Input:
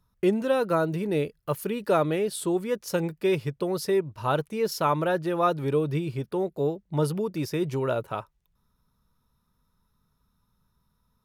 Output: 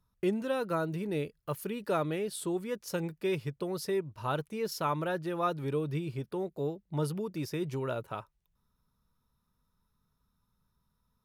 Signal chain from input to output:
dynamic equaliser 580 Hz, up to −3 dB, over −32 dBFS, Q 0.89
level −5.5 dB

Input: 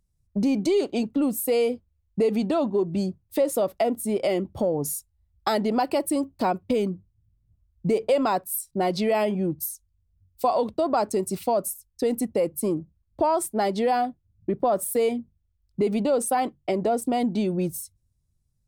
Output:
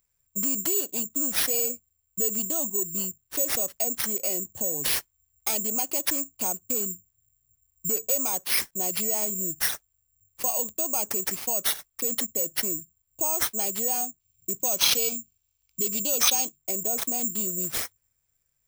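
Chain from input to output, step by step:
high shelf with overshoot 3,700 Hz +9.5 dB, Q 1.5
bad sample-rate conversion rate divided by 6×, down none, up zero stuff
gain on a spectral selection 0:14.21–0:16.56, 2,200–6,600 Hz +9 dB
level −12 dB

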